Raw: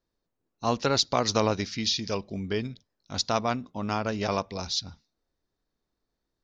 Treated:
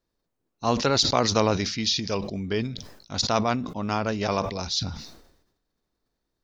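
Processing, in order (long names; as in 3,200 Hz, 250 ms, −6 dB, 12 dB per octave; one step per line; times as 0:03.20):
level that may fall only so fast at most 66 dB per second
level +2 dB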